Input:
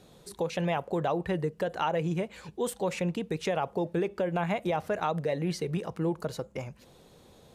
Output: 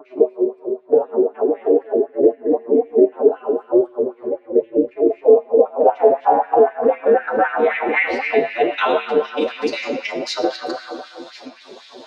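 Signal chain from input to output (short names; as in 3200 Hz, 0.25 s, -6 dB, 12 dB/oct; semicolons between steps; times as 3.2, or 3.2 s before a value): slices in reverse order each 93 ms, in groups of 6; ring modulator 120 Hz; low-pass sweep 420 Hz -> 4900 Hz, 3.07–6.11; reverb RT60 1.4 s, pre-delay 3 ms, DRR 0 dB; time stretch by phase-locked vocoder 1.6×; LFO high-pass sine 3.9 Hz 350–2200 Hz; in parallel at -1 dB: compressor, threshold -34 dBFS, peak gain reduction 18 dB; on the sum: dynamic EQ 1100 Hz, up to -6 dB, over -40 dBFS, Q 1.5; maximiser +10.5 dB; gain -1 dB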